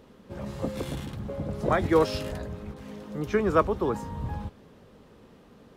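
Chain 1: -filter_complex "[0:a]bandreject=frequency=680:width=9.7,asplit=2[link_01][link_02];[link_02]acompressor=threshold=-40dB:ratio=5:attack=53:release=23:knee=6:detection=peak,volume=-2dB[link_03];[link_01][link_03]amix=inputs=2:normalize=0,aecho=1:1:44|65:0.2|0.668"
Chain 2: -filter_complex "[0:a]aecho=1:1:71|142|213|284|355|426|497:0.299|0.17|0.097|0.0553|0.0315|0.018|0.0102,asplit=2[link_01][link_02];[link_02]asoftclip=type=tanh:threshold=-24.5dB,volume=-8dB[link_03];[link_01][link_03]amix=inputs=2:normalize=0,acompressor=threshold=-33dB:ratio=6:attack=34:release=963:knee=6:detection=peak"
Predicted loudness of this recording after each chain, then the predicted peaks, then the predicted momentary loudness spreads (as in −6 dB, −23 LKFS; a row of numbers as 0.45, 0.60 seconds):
−25.0, −37.5 LKFS; −7.0, −22.0 dBFS; 15, 15 LU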